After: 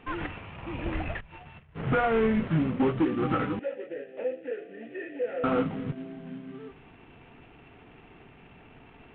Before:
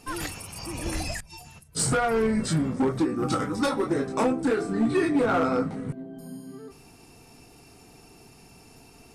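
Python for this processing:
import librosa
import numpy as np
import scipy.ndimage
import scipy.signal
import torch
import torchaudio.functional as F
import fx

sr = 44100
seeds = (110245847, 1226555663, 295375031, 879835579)

y = fx.cvsd(x, sr, bps=16000)
y = fx.vowel_filter(y, sr, vowel='e', at=(3.59, 5.44))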